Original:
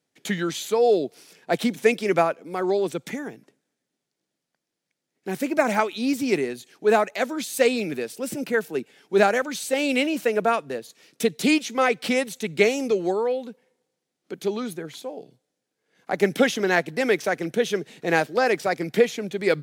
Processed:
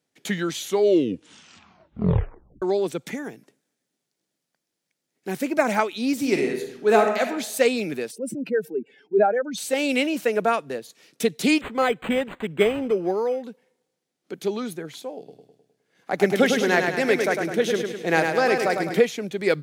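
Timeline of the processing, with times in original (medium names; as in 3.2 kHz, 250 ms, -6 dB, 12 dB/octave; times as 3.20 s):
0.56 s: tape stop 2.06 s
3.24–5.33 s: treble shelf 5.5 kHz +5 dB
6.13–7.21 s: reverb throw, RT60 0.9 s, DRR 2.5 dB
8.11–9.58 s: spectral contrast enhancement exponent 2
11.61–13.44 s: decimation joined by straight lines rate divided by 8×
15.18–19.00 s: feedback delay 103 ms, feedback 52%, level -5 dB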